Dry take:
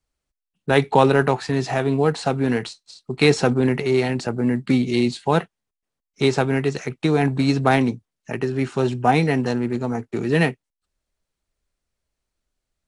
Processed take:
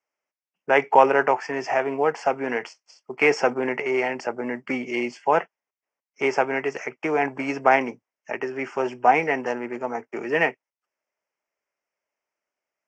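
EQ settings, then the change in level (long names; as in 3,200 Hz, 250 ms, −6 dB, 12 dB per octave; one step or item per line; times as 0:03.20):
Butterworth band-reject 3,900 Hz, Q 1.8
high-frequency loss of the air 83 metres
loudspeaker in its box 460–7,200 Hz, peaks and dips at 600 Hz +4 dB, 910 Hz +4 dB, 2,100 Hz +5 dB, 5,400 Hz +4 dB
0.0 dB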